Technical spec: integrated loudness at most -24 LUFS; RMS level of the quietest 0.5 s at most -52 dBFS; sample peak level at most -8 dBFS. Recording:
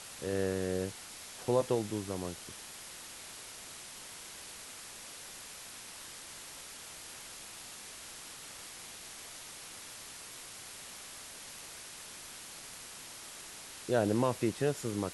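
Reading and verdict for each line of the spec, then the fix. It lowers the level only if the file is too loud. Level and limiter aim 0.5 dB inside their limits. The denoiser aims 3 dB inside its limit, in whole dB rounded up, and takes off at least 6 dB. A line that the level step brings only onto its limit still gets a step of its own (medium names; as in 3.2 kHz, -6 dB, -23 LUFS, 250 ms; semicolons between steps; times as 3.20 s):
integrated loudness -39.0 LUFS: pass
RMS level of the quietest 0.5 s -48 dBFS: fail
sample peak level -16.0 dBFS: pass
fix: noise reduction 7 dB, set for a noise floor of -48 dBFS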